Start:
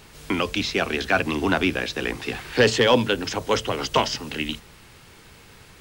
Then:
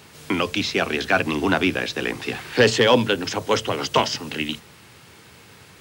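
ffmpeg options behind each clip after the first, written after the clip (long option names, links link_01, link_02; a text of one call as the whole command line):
ffmpeg -i in.wav -af "highpass=frequency=82:width=0.5412,highpass=frequency=82:width=1.3066,volume=1.5dB" out.wav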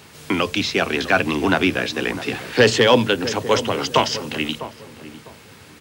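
ffmpeg -i in.wav -filter_complex "[0:a]asplit=2[link_01][link_02];[link_02]adelay=652,lowpass=frequency=910:poles=1,volume=-12dB,asplit=2[link_03][link_04];[link_04]adelay=652,lowpass=frequency=910:poles=1,volume=0.29,asplit=2[link_05][link_06];[link_06]adelay=652,lowpass=frequency=910:poles=1,volume=0.29[link_07];[link_01][link_03][link_05][link_07]amix=inputs=4:normalize=0,volume=2dB" out.wav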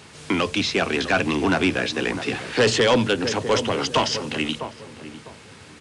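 ffmpeg -i in.wav -af "asoftclip=type=tanh:threshold=-12dB,aresample=22050,aresample=44100" out.wav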